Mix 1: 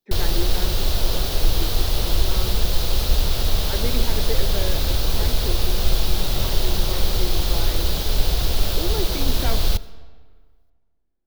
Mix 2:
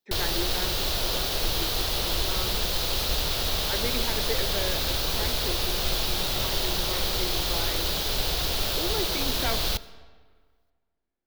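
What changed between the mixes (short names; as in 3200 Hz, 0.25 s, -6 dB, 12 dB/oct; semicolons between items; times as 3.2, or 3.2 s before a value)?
background: add high shelf 5100 Hz -11.5 dB; master: add tilt +2.5 dB/oct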